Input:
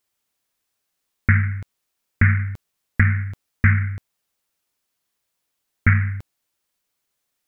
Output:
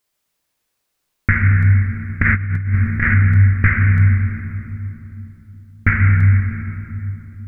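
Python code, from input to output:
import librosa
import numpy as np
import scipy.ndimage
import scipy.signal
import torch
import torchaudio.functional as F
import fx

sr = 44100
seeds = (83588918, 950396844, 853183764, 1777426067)

y = fx.room_shoebox(x, sr, seeds[0], volume_m3=130.0, walls='hard', distance_m=0.46)
y = fx.over_compress(y, sr, threshold_db=-17.0, ratio=-0.5, at=(2.22, 3.15))
y = y * librosa.db_to_amplitude(2.0)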